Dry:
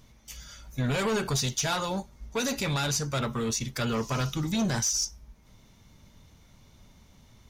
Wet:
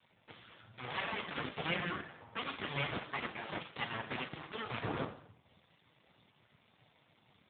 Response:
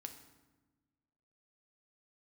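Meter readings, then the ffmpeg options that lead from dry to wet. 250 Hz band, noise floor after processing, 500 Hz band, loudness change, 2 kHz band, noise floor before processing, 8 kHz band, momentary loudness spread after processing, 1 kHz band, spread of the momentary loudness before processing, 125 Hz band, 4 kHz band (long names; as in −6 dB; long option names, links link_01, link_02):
−14.5 dB, −71 dBFS, −11.5 dB, −11.0 dB, −4.0 dB, −57 dBFS, below −40 dB, 18 LU, −7.0 dB, 10 LU, −15.5 dB, −10.5 dB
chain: -filter_complex "[0:a]acrossover=split=160|1200[link_01][link_02][link_03];[link_01]acompressor=threshold=-43dB:ratio=6[link_04];[link_02]lowshelf=frequency=420:width_type=q:width=3:gain=-11.5[link_05];[link_03]acontrast=52[link_06];[link_04][link_05][link_06]amix=inputs=3:normalize=0[link_07];[1:a]atrim=start_sample=2205[link_08];[link_07][link_08]afir=irnorm=-1:irlink=0,aeval=exprs='abs(val(0))':channel_layout=same,highpass=73,adynamicequalizer=threshold=0.00158:dfrequency=150:dqfactor=3.6:tfrequency=150:tqfactor=3.6:attack=5:release=100:ratio=0.375:range=2:mode=boostabove:tftype=bell,volume=1dB" -ar 8000 -c:a libopencore_amrnb -b:a 7400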